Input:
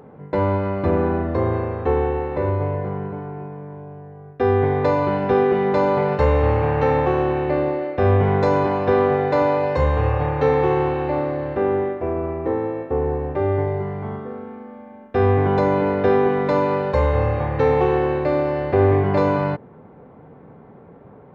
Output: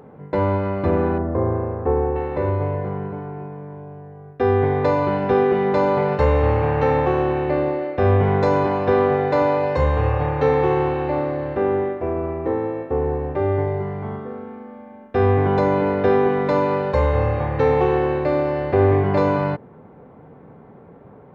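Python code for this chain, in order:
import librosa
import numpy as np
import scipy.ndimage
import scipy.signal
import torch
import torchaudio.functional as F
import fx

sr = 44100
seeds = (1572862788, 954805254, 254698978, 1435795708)

y = fx.lowpass(x, sr, hz=1200.0, slope=12, at=(1.18, 2.16))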